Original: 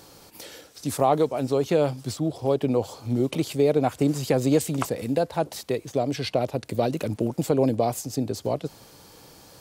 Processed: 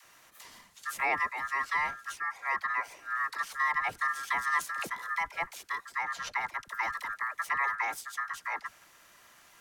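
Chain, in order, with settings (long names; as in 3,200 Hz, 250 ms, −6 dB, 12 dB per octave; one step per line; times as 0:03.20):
ring modulation 1,500 Hz
all-pass dispersion lows, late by 50 ms, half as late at 500 Hz
level −6 dB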